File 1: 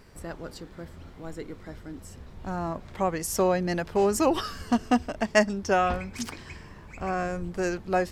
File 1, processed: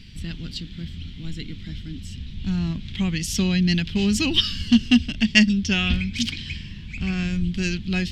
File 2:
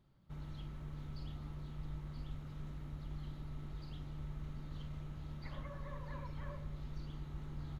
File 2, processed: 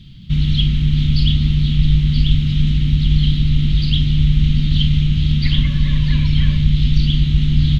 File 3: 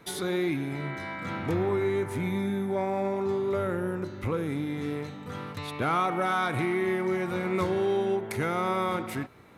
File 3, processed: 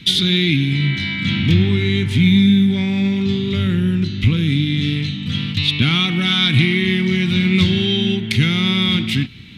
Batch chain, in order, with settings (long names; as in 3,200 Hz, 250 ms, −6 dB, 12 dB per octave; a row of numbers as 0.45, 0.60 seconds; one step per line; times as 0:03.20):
drawn EQ curve 220 Hz 0 dB, 560 Hz −29 dB, 1,200 Hz −23 dB, 3,200 Hz +10 dB, 6,200 Hz −6 dB, 11,000 Hz −16 dB
normalise the peak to −1.5 dBFS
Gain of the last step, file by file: +11.0, +31.0, +18.5 decibels